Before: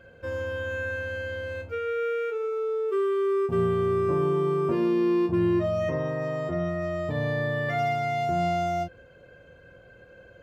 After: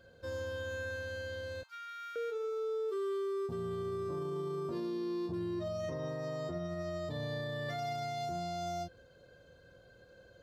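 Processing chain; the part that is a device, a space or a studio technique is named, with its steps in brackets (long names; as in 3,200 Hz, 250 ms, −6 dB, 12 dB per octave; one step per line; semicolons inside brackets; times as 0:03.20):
0:01.63–0:02.16: Butterworth high-pass 940 Hz 48 dB per octave
over-bright horn tweeter (high shelf with overshoot 3,200 Hz +7 dB, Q 3; brickwall limiter −23 dBFS, peak gain reduction 8 dB)
level −7.5 dB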